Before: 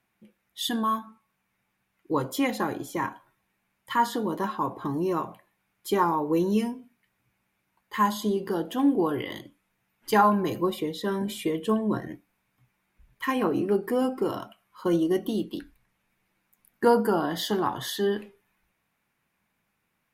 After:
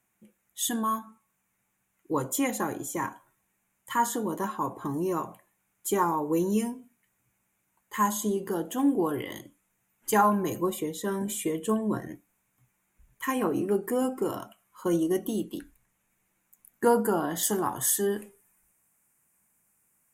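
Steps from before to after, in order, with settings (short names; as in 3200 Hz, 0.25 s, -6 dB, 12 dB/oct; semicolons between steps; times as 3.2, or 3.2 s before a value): resonant high shelf 5800 Hz +7 dB, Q 3, from 17.43 s +13 dB; gain -2 dB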